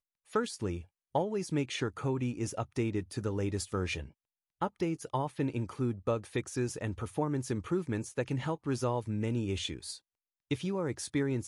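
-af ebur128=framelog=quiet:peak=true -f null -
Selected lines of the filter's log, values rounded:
Integrated loudness:
  I:         -34.5 LUFS
  Threshold: -44.6 LUFS
Loudness range:
  LRA:         1.2 LU
  Threshold: -54.7 LUFS
  LRA low:   -35.3 LUFS
  LRA high:  -34.1 LUFS
True peak:
  Peak:      -18.2 dBFS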